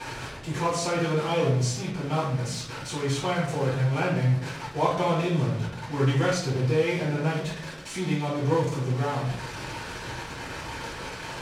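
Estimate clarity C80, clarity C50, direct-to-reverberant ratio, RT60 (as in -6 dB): 7.5 dB, 3.5 dB, -10.0 dB, 0.65 s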